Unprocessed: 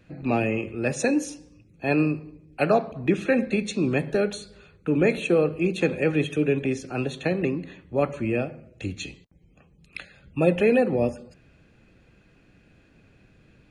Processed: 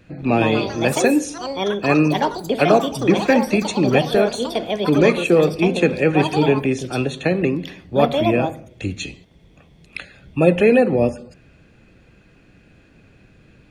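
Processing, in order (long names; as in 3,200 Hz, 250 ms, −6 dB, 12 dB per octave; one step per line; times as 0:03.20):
delay with pitch and tempo change per echo 189 ms, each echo +5 semitones, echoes 3, each echo −6 dB
level +6 dB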